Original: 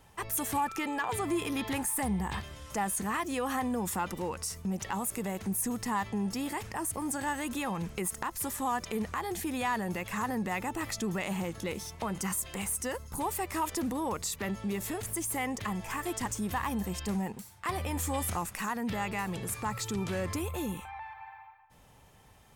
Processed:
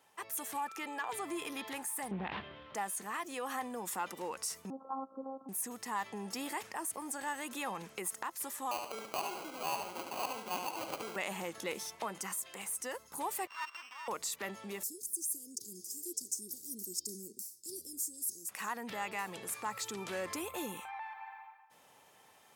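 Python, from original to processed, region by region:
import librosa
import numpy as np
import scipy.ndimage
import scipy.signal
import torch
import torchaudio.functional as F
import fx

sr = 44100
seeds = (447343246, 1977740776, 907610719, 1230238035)

y = fx.chain(x, sr, fx.self_delay(depth_ms=0.37),
    fx.steep_lowpass(hz=3600.0, slope=36),
    fx.low_shelf(hz=360.0, db=11.5), at=(2.11, 2.75))
y = fx.chain(y, sr, fx.steep_lowpass(hz=1300.0, slope=96),
    fx.robotise(hz=267.0), at=(4.7, 5.49))
y = fx.chain(y, sr, fx.weighting(curve='A'),
    fx.sample_hold(seeds[0], rate_hz=1800.0, jitter_pct=0),
    fx.echo_feedback(ms=72, feedback_pct=34, wet_db=-6), at=(8.71, 11.16))
y = fx.chain(y, sr, fx.sample_sort(block=16),
    fx.ladder_highpass(hz=970.0, resonance_pct=60),
    fx.resample_linear(factor=4), at=(13.47, 14.08))
y = fx.chain(y, sr, fx.cheby1_bandstop(low_hz=380.0, high_hz=5000.0, order=4),
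    fx.bass_treble(bass_db=-11, treble_db=7), at=(14.83, 18.49))
y = scipy.signal.sosfilt(scipy.signal.bessel(2, 430.0, 'highpass', norm='mag', fs=sr, output='sos'), y)
y = fx.rider(y, sr, range_db=4, speed_s=0.5)
y = F.gain(torch.from_numpy(y), -4.0).numpy()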